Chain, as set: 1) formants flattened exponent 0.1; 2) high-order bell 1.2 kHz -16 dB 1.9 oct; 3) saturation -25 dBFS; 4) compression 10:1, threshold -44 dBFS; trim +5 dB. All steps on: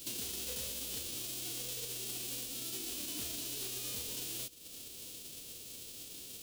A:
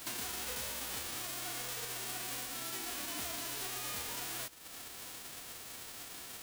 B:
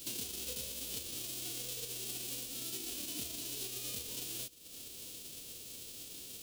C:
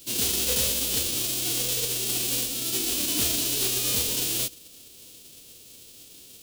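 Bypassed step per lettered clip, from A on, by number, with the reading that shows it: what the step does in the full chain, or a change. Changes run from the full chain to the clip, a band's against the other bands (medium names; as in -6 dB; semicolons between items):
2, 1 kHz band +13.5 dB; 3, distortion -11 dB; 4, crest factor change -5.5 dB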